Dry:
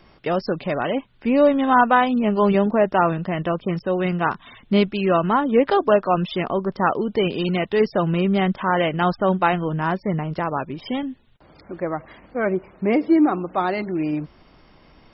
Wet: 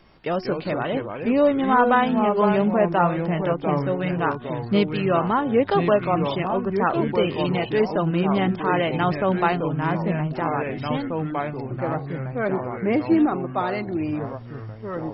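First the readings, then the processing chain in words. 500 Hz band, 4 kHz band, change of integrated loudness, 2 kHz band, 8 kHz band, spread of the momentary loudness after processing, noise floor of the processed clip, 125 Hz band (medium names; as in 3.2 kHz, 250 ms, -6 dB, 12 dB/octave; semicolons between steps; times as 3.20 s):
-1.0 dB, -2.0 dB, -1.5 dB, -2.0 dB, no reading, 8 LU, -36 dBFS, +0.5 dB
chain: ever faster or slower copies 141 ms, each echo -3 st, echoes 3, each echo -6 dB; de-hum 365.2 Hz, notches 4; trim -2.5 dB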